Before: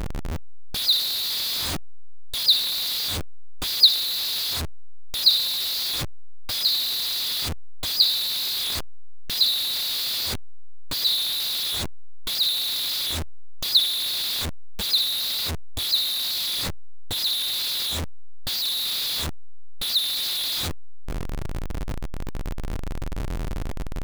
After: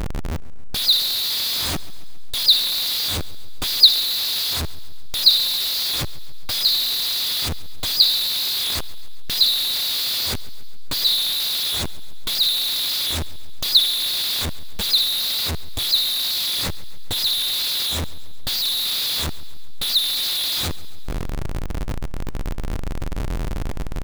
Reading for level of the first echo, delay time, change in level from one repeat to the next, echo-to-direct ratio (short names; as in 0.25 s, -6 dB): -19.5 dB, 0.137 s, -4.5 dB, -17.5 dB